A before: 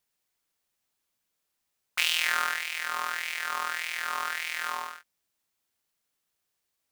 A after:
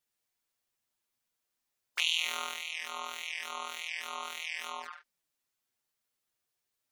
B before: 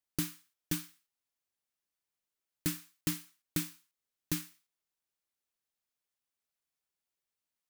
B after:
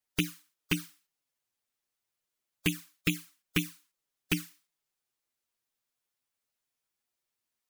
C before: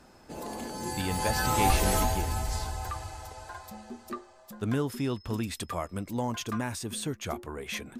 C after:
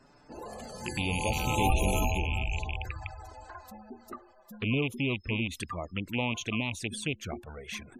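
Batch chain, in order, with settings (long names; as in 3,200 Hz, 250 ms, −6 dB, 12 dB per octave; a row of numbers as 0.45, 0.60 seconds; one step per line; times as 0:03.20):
loose part that buzzes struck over −33 dBFS, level −17 dBFS
flanger swept by the level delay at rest 8.4 ms, full sweep at −28 dBFS
gate on every frequency bin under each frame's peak −25 dB strong
normalise the peak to −12 dBFS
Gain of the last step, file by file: −1.0, +6.0, 0.0 decibels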